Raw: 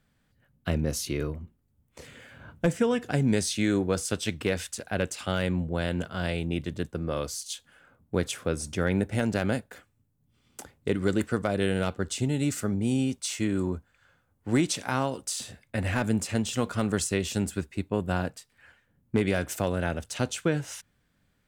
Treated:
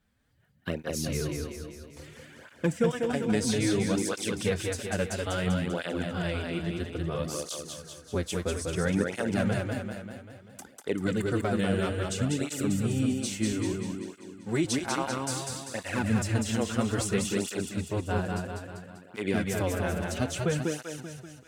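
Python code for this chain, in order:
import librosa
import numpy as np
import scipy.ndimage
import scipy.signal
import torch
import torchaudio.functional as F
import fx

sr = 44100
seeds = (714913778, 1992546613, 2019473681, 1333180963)

y = fx.highpass(x, sr, hz=130.0, slope=12, at=(13.52, 14.65))
y = fx.echo_feedback(y, sr, ms=195, feedback_pct=56, wet_db=-3.5)
y = fx.flanger_cancel(y, sr, hz=0.6, depth_ms=8.0)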